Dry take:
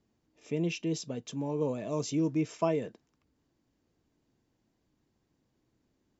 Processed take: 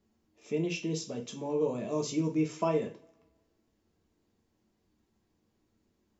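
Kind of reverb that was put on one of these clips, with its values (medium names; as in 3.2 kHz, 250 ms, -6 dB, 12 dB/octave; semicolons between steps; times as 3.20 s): two-slope reverb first 0.32 s, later 1.5 s, from -27 dB, DRR 1.5 dB; trim -1.5 dB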